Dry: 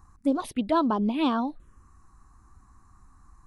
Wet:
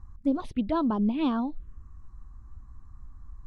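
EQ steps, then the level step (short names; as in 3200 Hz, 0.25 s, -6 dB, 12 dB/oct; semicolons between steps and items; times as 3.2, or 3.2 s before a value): air absorption 51 m; RIAA curve playback; high shelf 2600 Hz +11.5 dB; -7.0 dB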